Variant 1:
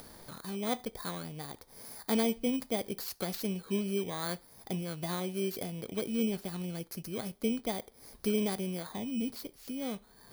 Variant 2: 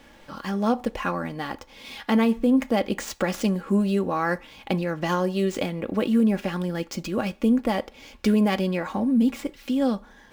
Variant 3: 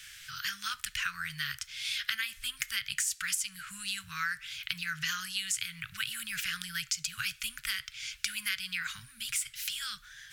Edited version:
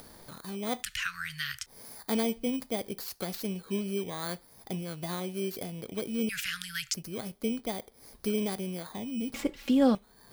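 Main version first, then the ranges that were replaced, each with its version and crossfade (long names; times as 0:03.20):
1
0:00.83–0:01.66: punch in from 3
0:06.29–0:06.94: punch in from 3
0:09.34–0:09.95: punch in from 2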